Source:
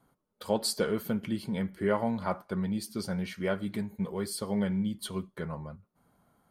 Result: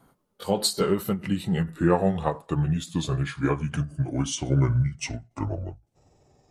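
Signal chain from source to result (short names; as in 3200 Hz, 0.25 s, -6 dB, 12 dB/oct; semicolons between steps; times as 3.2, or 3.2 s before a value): gliding pitch shift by -10 st starting unshifted; ending taper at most 230 dB/s; gain +8.5 dB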